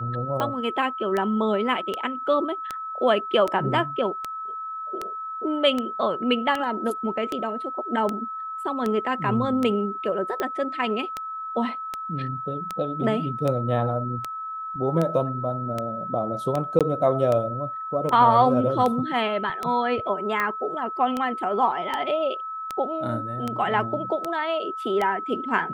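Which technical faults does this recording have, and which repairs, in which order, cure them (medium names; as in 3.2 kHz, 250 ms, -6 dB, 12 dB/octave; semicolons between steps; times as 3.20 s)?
tick 78 rpm -13 dBFS
whine 1.3 kHz -30 dBFS
16.79–16.81 s: dropout 17 ms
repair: de-click; band-stop 1.3 kHz, Q 30; interpolate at 16.79 s, 17 ms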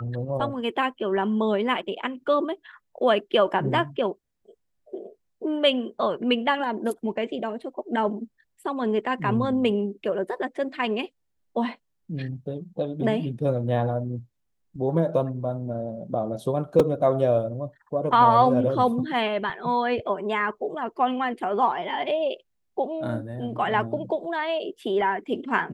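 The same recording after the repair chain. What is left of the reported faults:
nothing left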